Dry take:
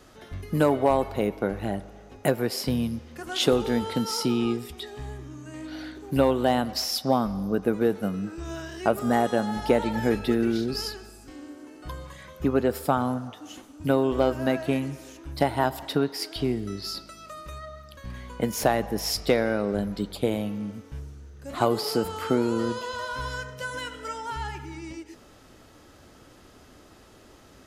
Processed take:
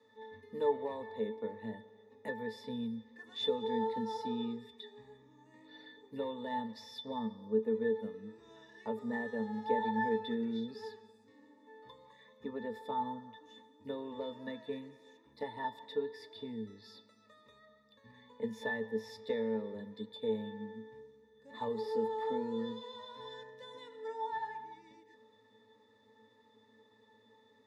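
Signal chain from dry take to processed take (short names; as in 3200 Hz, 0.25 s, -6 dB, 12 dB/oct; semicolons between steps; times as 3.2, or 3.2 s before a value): HPF 320 Hz 12 dB/oct; high shelf 2200 Hz +10 dB; in parallel at -7 dB: hard clip -23.5 dBFS, distortion -6 dB; on the sum: octave resonator A, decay 0.19 s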